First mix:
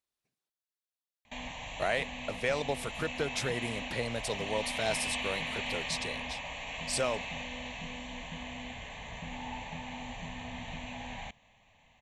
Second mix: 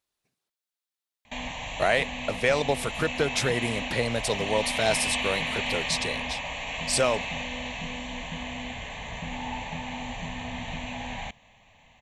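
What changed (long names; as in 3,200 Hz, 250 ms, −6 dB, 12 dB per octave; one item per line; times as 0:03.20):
speech +7.5 dB
background +6.5 dB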